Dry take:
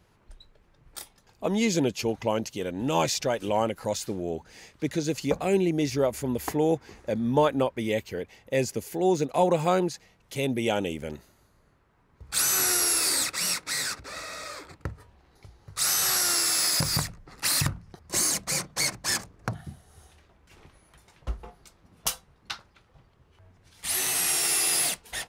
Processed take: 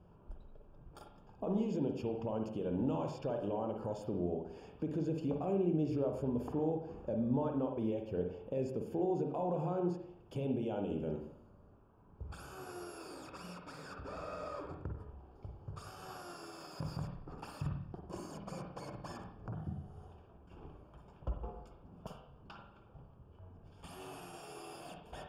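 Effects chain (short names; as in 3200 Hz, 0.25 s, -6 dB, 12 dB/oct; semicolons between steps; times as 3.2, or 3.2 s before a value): compressor 2:1, threshold -38 dBFS, peak gain reduction 11.5 dB; limiter -28 dBFS, peak gain reduction 10.5 dB; running mean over 22 samples; reverb RT60 0.70 s, pre-delay 45 ms, DRR 3 dB; gain +1.5 dB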